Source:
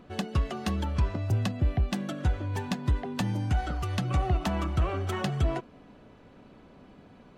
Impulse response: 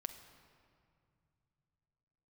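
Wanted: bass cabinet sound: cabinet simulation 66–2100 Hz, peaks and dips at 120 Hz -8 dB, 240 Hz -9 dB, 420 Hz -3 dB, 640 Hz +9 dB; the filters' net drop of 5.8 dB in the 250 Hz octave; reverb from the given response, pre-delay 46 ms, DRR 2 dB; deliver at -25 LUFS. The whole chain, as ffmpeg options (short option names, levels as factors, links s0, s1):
-filter_complex "[0:a]equalizer=f=250:t=o:g=-3.5,asplit=2[s0][s1];[1:a]atrim=start_sample=2205,adelay=46[s2];[s1][s2]afir=irnorm=-1:irlink=0,volume=1.06[s3];[s0][s3]amix=inputs=2:normalize=0,highpass=f=66:w=0.5412,highpass=f=66:w=1.3066,equalizer=f=120:t=q:w=4:g=-8,equalizer=f=240:t=q:w=4:g=-9,equalizer=f=420:t=q:w=4:g=-3,equalizer=f=640:t=q:w=4:g=9,lowpass=f=2100:w=0.5412,lowpass=f=2100:w=1.3066,volume=1.88"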